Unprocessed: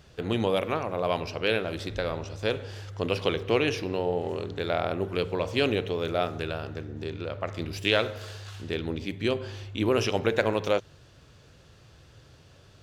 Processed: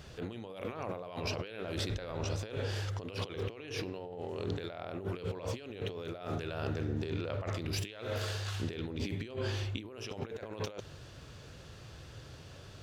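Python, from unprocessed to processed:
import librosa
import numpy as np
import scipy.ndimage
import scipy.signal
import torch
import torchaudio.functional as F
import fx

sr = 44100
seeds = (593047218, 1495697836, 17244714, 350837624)

y = fx.over_compress(x, sr, threshold_db=-37.0, ratio=-1.0)
y = F.gain(torch.from_numpy(y), -2.5).numpy()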